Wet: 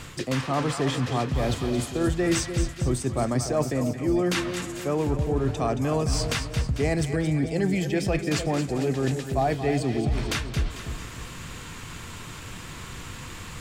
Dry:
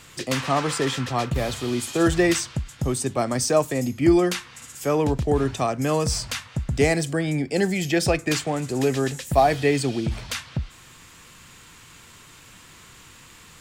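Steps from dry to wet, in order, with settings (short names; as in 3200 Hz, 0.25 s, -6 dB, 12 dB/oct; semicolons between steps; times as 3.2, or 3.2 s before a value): tilt -1.5 dB/oct; reverse; compressor 4:1, threshold -33 dBFS, peak gain reduction 19.5 dB; reverse; split-band echo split 730 Hz, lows 0.298 s, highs 0.223 s, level -8.5 dB; gain +8 dB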